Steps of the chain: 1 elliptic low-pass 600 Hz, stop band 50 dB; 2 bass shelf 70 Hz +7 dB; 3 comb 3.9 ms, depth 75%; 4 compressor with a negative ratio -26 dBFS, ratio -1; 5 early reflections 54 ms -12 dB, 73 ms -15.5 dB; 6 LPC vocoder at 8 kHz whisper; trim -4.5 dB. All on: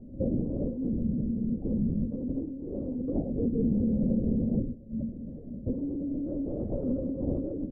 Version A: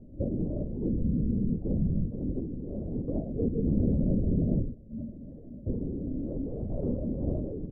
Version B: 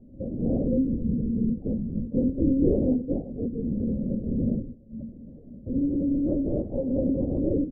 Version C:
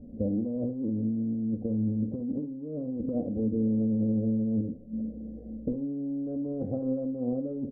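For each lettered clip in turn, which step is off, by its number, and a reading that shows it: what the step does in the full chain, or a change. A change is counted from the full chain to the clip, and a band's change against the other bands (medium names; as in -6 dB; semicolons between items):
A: 3, crest factor change +2.0 dB; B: 4, crest factor change +2.0 dB; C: 6, crest factor change -1.5 dB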